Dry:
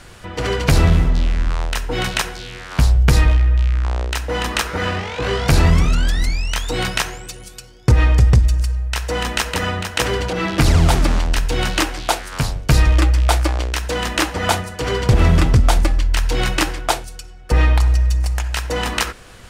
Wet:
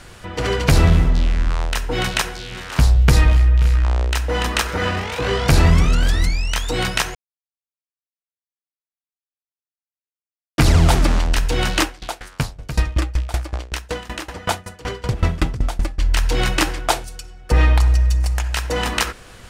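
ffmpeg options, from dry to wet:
-filter_complex "[0:a]asettb=1/sr,asplit=3[s0][s1][s2];[s0]atrim=end=1.984[s3];[s1]atrim=start=1.98:end=6.28,asetpts=PTS-STARTPTS,afade=t=in:d=0.004:c=qsin,afade=t=out:st=4.296:d=0.004:c=qsin,aecho=1:1:532|569:0.141|0.133,atrim=end_sample=189630[s4];[s2]atrim=start=6.276[s5];[s3][s4]acrossfade=d=0.004:c1=hsin:c2=qsin[s6];[s6][s5]acrossfade=d=0.004:c1=qsin:c2=hsin,asettb=1/sr,asplit=3[s7][s8][s9];[s7]atrim=end=11.834[s10];[s8]atrim=start=11.83:end=16.01,asetpts=PTS-STARTPTS,afade=t=in:d=0.004:c=qsin,afade=t=out:st=4.176:d=0.004:c=qsin,aeval=exprs='val(0)*pow(10,-22*if(lt(mod(5.3*n/s,1),2*abs(5.3)/1000),1-mod(5.3*n/s,1)/(2*abs(5.3)/1000),(mod(5.3*n/s,1)-2*abs(5.3)/1000)/(1-2*abs(5.3)/1000))/20)':c=same[s11];[s9]atrim=start=16.006[s12];[s10][s11]acrossfade=d=0.004:c1=hsin:c2=qsin[s13];[s13][s12]acrossfade=d=0.004:c1=qsin:c2=hsin,asplit=3[s14][s15][s16];[s14]atrim=end=7.15,asetpts=PTS-STARTPTS,afade=t=out:st=7.146:d=0.004:c=hsin[s17];[s15]atrim=start=7.15:end=10.58,asetpts=PTS-STARTPTS,volume=0[s18];[s16]atrim=start=10.58,asetpts=PTS-STARTPTS,afade=t=in:d=0.004:c=hsin[s19];[s17][s18][s19]concat=n=3:v=0:a=1"

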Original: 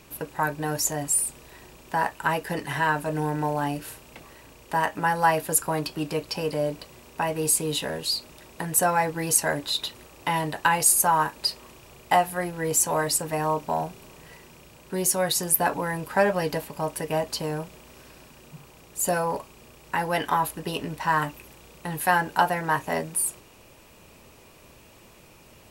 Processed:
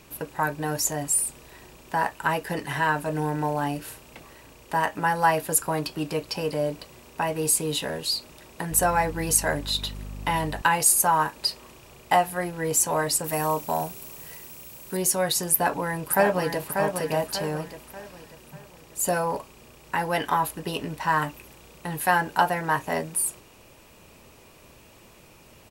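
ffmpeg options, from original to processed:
-filter_complex "[0:a]asettb=1/sr,asplit=3[s0][s1][s2];[s0]atrim=end=8.714[s3];[s1]atrim=start=8.71:end=10.62,asetpts=PTS-STARTPTS,afade=t=in:d=0.004:c=qsin,afade=t=out:st=1.906:d=0.004:c=qsin,aeval=exprs='val(0)+0.0178*(sin(2*PI*50*n/s)+sin(2*PI*2*50*n/s)/2+sin(2*PI*3*50*n/s)/3+sin(2*PI*4*50*n/s)/4+sin(2*PI*5*50*n/s)/5)':c=same[s4];[s2]atrim=start=10.616[s5];[s3][s4]acrossfade=d=0.004:c1=hsin:c2=qsin[s6];[s6][s5]acrossfade=d=0.004:c1=qsin:c2=hsin,asettb=1/sr,asplit=3[s7][s8][s9];[s7]atrim=end=13.244[s10];[s8]atrim=start=13.24:end=14.97,asetpts=PTS-STARTPTS,afade=t=in:d=0.004:c=qsin,afade=t=out:st=1.726:d=0.004:c=qsin,aemphasis=mode=production:type=50fm[s11];[s9]atrim=start=14.966[s12];[s10][s11]acrossfade=d=0.004:c1=hsin:c2=qsin[s13];[s13][s12]acrossfade=d=0.004:c1=qsin:c2=hsin,asplit=2[s14][s15];[s15]afade=t=in:st=15.51:d=0.01,afade=t=out:st=16.69:d=0.01,aecho=0:1:590|1180|1770|2360|2950:0.530884|0.212354|0.0849415|0.0339766|0.0135906[s16];[s14][s16]amix=inputs=2:normalize=0"

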